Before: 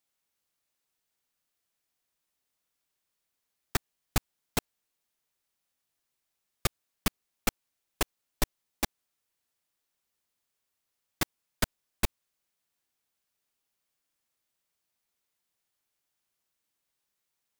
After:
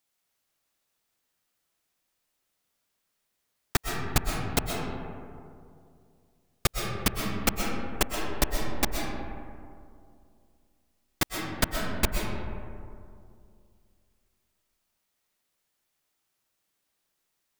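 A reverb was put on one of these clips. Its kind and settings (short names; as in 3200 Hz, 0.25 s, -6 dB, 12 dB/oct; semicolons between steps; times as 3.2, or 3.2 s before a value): digital reverb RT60 2.4 s, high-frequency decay 0.35×, pre-delay 85 ms, DRR 0.5 dB; gain +3 dB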